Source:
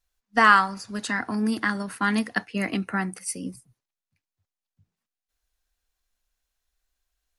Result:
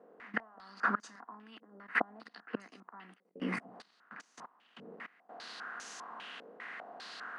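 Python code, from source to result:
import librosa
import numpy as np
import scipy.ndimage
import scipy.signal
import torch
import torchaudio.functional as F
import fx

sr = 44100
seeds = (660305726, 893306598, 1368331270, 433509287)

p1 = fx.bin_compress(x, sr, power=0.6)
p2 = fx.gate_flip(p1, sr, shuts_db=-17.0, range_db=-32)
p3 = p2 + fx.echo_single(p2, sr, ms=206, db=-23.0, dry=0)
p4 = fx.level_steps(p3, sr, step_db=20)
p5 = scipy.signal.sosfilt(scipy.signal.butter(4, 200.0, 'highpass', fs=sr, output='sos'), p4)
p6 = fx.rider(p5, sr, range_db=4, speed_s=2.0)
p7 = fx.filter_held_lowpass(p6, sr, hz=5.0, low_hz=490.0, high_hz=6300.0)
y = p7 * librosa.db_to_amplitude(6.0)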